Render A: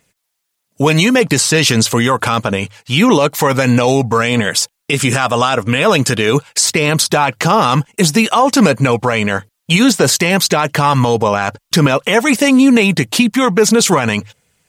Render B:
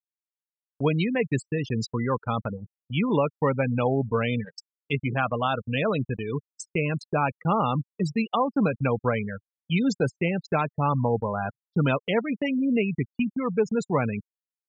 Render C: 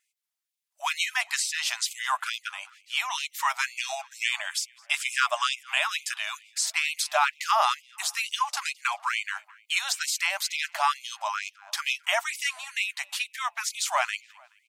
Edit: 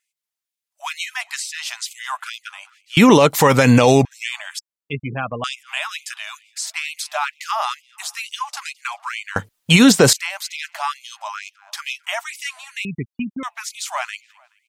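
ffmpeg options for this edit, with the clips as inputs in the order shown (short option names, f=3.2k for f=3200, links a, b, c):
-filter_complex "[0:a]asplit=2[a][b];[1:a]asplit=2[c][d];[2:a]asplit=5[e][f][g][h][i];[e]atrim=end=2.972[j];[a]atrim=start=2.968:end=4.052[k];[f]atrim=start=4.048:end=4.592[l];[c]atrim=start=4.588:end=5.442[m];[g]atrim=start=5.438:end=9.362[n];[b]atrim=start=9.358:end=10.132[o];[h]atrim=start=10.128:end=12.852[p];[d]atrim=start=12.848:end=13.432[q];[i]atrim=start=13.428[r];[j][k]acrossfade=d=0.004:c1=hsin:c2=hsin[s];[s][l]acrossfade=d=0.004:c1=hsin:c2=hsin[t];[t][m]acrossfade=d=0.004:c1=hsin:c2=hsin[u];[u][n]acrossfade=d=0.004:c1=hsin:c2=hsin[v];[v][o]acrossfade=d=0.004:c1=hsin:c2=hsin[w];[w][p]acrossfade=d=0.004:c1=hsin:c2=hsin[x];[x][q]acrossfade=d=0.004:c1=hsin:c2=hsin[y];[y][r]acrossfade=d=0.004:c1=hsin:c2=hsin"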